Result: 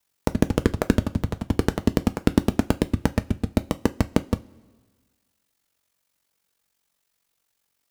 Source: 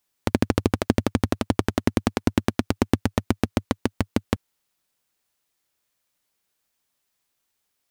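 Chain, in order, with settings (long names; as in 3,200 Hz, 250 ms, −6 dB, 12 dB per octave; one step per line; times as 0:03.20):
wave folding −6.5 dBFS
ring modulation 23 Hz
coupled-rooms reverb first 0.21 s, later 1.6 s, from −21 dB, DRR 9.5 dB
level +4 dB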